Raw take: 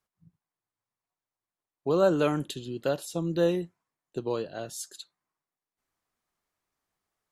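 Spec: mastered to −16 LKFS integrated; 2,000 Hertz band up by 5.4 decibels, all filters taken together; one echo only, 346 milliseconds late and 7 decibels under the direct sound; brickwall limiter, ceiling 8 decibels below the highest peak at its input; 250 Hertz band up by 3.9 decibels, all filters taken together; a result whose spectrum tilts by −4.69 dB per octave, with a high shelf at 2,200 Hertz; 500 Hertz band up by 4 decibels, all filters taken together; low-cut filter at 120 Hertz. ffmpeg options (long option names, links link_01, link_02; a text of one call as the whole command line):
ffmpeg -i in.wav -af "highpass=120,equalizer=frequency=250:width_type=o:gain=4.5,equalizer=frequency=500:width_type=o:gain=3,equalizer=frequency=2000:width_type=o:gain=3.5,highshelf=frequency=2200:gain=7.5,alimiter=limit=-15dB:level=0:latency=1,aecho=1:1:346:0.447,volume=11.5dB" out.wav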